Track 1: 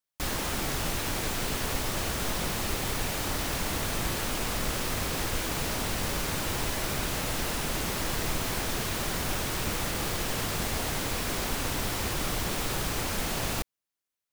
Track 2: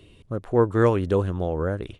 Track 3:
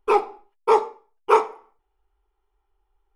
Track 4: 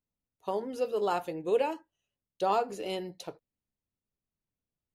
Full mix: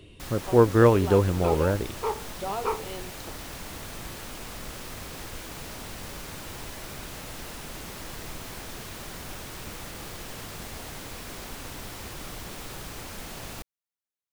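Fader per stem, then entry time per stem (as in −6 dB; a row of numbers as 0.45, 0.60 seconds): −8.5, +1.5, −12.5, −5.0 decibels; 0.00, 0.00, 1.35, 0.00 seconds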